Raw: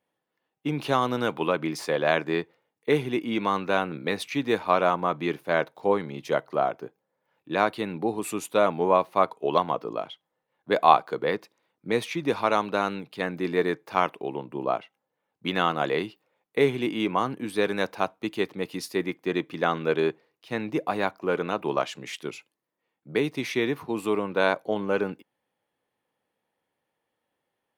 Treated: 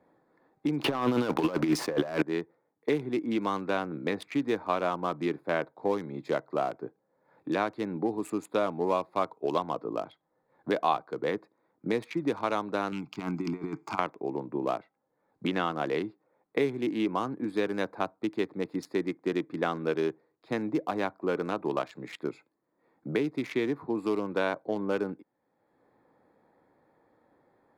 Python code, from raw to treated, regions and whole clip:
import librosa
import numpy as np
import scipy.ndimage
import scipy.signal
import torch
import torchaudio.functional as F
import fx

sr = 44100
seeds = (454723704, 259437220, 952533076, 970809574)

y = fx.chain(x, sr, fx.leveller(passes=3),
    fx.over_compress(threshold_db=-20.0, ratio=-0.5), at=(0.84, 2.22))
y = fx.chain(y, sr, fx.peak_eq(hz=6300.0, db=13.0, octaves=2.1),
    fx.over_compress(threshold_db=-30.0, ratio=-1.0),
    fx.fixed_phaser(hz=2600.0, stages=8), at=(12.92, 13.99))
y = fx.wiener(y, sr, points=15)
y = fx.peak_eq(y, sr, hz=300.0, db=4.5, octaves=0.53)
y = fx.band_squash(y, sr, depth_pct=70)
y = F.gain(torch.from_numpy(y), -5.5).numpy()